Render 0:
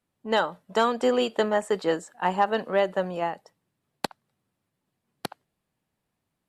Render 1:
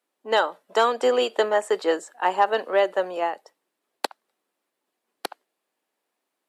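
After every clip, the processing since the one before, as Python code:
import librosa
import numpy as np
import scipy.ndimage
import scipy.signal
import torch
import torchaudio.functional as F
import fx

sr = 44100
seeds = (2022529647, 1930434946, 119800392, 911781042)

y = scipy.signal.sosfilt(scipy.signal.butter(4, 320.0, 'highpass', fs=sr, output='sos'), x)
y = y * 10.0 ** (3.0 / 20.0)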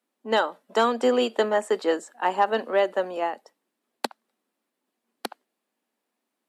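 y = fx.peak_eq(x, sr, hz=230.0, db=12.0, octaves=0.52)
y = y * 10.0 ** (-2.0 / 20.0)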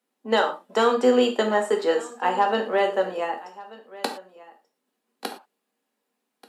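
y = x + 10.0 ** (-20.0 / 20.0) * np.pad(x, (int(1185 * sr / 1000.0), 0))[:len(x)]
y = fx.rev_gated(y, sr, seeds[0], gate_ms=140, shape='falling', drr_db=3.0)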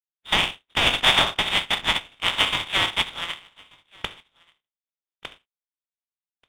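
y = fx.spec_flatten(x, sr, power=0.33)
y = fx.freq_invert(y, sr, carrier_hz=3900)
y = fx.power_curve(y, sr, exponent=1.4)
y = y * 10.0 ** (4.5 / 20.0)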